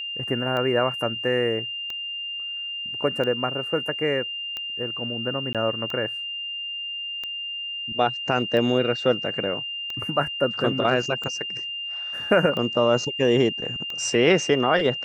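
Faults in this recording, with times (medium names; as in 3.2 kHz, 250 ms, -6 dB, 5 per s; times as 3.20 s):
tick 45 rpm -18 dBFS
whine 2.8 kHz -29 dBFS
5.53–5.55 s: dropout 17 ms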